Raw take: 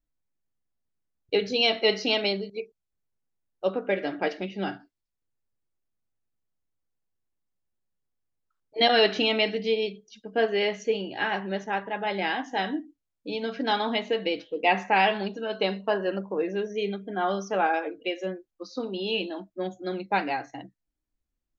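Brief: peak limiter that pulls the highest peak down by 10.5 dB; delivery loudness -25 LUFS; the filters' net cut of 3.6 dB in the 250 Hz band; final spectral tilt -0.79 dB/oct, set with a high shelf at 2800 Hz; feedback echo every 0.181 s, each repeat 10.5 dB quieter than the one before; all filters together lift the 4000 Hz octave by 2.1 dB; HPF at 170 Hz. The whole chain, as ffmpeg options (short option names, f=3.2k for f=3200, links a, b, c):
-af "highpass=170,equalizer=f=250:t=o:g=-3.5,highshelf=f=2.8k:g=-5,equalizer=f=4k:t=o:g=7,alimiter=limit=-16.5dB:level=0:latency=1,aecho=1:1:181|362|543:0.299|0.0896|0.0269,volume=4.5dB"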